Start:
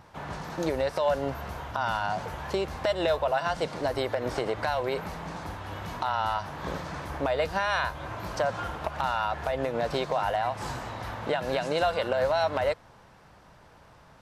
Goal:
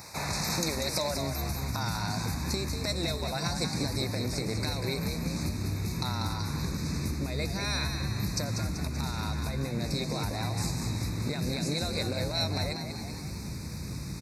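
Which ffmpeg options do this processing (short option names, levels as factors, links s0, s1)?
-filter_complex "[0:a]asubboost=boost=11:cutoff=200,acompressor=threshold=0.0224:ratio=10,highpass=63,asplit=2[s0][s1];[s1]asplit=7[s2][s3][s4][s5][s6][s7][s8];[s2]adelay=192,afreqshift=65,volume=0.447[s9];[s3]adelay=384,afreqshift=130,volume=0.251[s10];[s4]adelay=576,afreqshift=195,volume=0.14[s11];[s5]adelay=768,afreqshift=260,volume=0.0785[s12];[s6]adelay=960,afreqshift=325,volume=0.0442[s13];[s7]adelay=1152,afreqshift=390,volume=0.0245[s14];[s8]adelay=1344,afreqshift=455,volume=0.0138[s15];[s9][s10][s11][s12][s13][s14][s15]amix=inputs=7:normalize=0[s16];[s0][s16]amix=inputs=2:normalize=0,aexciter=amount=6.8:drive=3.4:freq=2300,asuperstop=centerf=3100:order=12:qfactor=2.7,volume=1.58"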